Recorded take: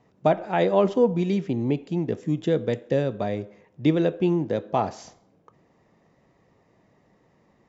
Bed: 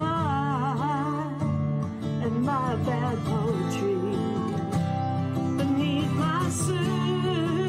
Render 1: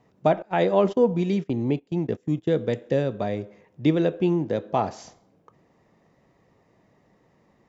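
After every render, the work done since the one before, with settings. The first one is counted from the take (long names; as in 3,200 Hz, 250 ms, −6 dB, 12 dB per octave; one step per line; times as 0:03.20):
0:00.42–0:02.50: noise gate −32 dBFS, range −19 dB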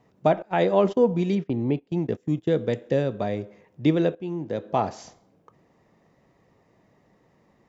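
0:01.35–0:01.91: high-frequency loss of the air 130 metres
0:04.15–0:04.76: fade in, from −16.5 dB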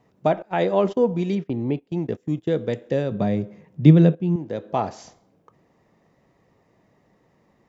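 0:03.11–0:04.36: parametric band 160 Hz +15 dB 1.1 octaves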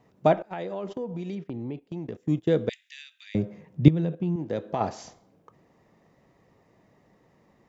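0:00.48–0:02.16: downward compressor 4 to 1, threshold −32 dBFS
0:02.69–0:03.35: Butterworth high-pass 2,100 Hz
0:03.88–0:04.81: downward compressor 10 to 1, threshold −22 dBFS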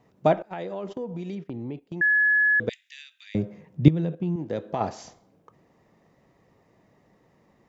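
0:02.01–0:02.60: beep over 1,700 Hz −17 dBFS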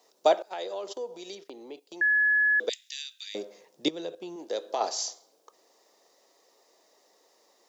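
high-pass filter 400 Hz 24 dB per octave
high shelf with overshoot 3,200 Hz +12.5 dB, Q 1.5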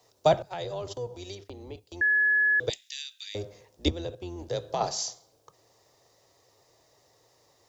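sub-octave generator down 2 octaves, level +2 dB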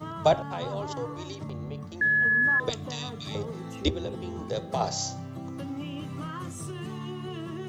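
mix in bed −11 dB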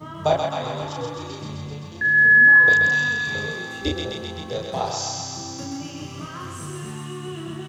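double-tracking delay 33 ms −2.5 dB
feedback echo with a high-pass in the loop 130 ms, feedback 78%, high-pass 680 Hz, level −3 dB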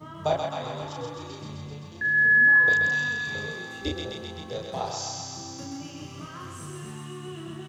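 level −5.5 dB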